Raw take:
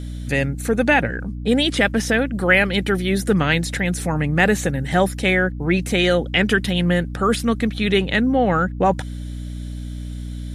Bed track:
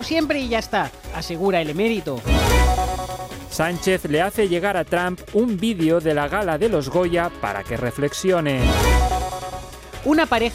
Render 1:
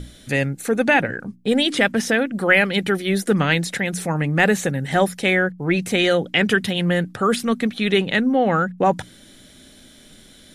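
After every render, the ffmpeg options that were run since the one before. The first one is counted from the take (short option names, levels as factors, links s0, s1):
-af "bandreject=f=60:t=h:w=6,bandreject=f=120:t=h:w=6,bandreject=f=180:t=h:w=6,bandreject=f=240:t=h:w=6,bandreject=f=300:t=h:w=6"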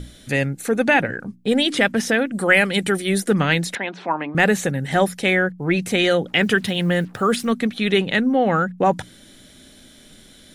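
-filter_complex "[0:a]asettb=1/sr,asplit=3[s0][s1][s2];[s0]atrim=end=2.314[s3];[s1]atrim=start=2.31:end=3.2,asetpts=PTS-STARTPTS,afade=t=in:d=0.004:c=qsin,afade=t=out:st=0.886:d=0.004:c=qsin,equalizer=f=8500:t=o:w=0.63:g=11.5[s4];[s2]atrim=start=3.196[s5];[s3][s4]acrossfade=d=0.004:c1=hsin:c2=qsin[s6];[s6][s5]acrossfade=d=0.004:c1=qsin:c2=hsin,asettb=1/sr,asplit=3[s7][s8][s9];[s7]atrim=end=3.754[s10];[s8]atrim=start=3.75:end=4.35,asetpts=PTS-STARTPTS,afade=t=in:d=0.004:c=qsin,afade=t=out:st=0.596:d=0.004:c=qsin,highpass=f=260:w=0.5412,highpass=f=260:w=1.3066,equalizer=f=480:t=q:w=4:g=-7,equalizer=f=680:t=q:w=4:g=3,equalizer=f=990:t=q:w=4:g=10,equalizer=f=1900:t=q:w=4:g=-5,lowpass=f=3700:w=0.5412,lowpass=f=3700:w=1.3066[s11];[s9]atrim=start=4.346[s12];[s10][s11]acrossfade=d=0.004:c1=hsin:c2=qsin[s13];[s13][s12]acrossfade=d=0.004:c1=qsin:c2=hsin,asplit=3[s14][s15][s16];[s14]afade=t=out:st=6.27:d=0.02[s17];[s15]acrusher=bits=7:mix=0:aa=0.5,afade=t=in:st=6.27:d=0.02,afade=t=out:st=7.51:d=0.02[s18];[s16]afade=t=in:st=7.51:d=0.02[s19];[s17][s18][s19]amix=inputs=3:normalize=0"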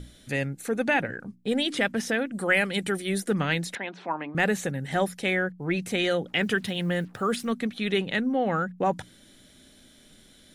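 -af "volume=0.422"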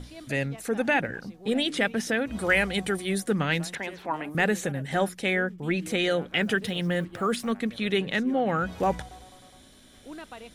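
-filter_complex "[1:a]volume=0.0562[s0];[0:a][s0]amix=inputs=2:normalize=0"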